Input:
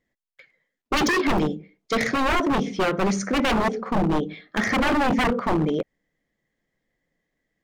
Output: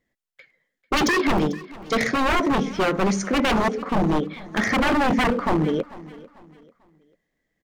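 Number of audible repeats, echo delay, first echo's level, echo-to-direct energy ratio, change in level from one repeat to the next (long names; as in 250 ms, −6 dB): 2, 444 ms, −19.5 dB, −19.0 dB, −9.0 dB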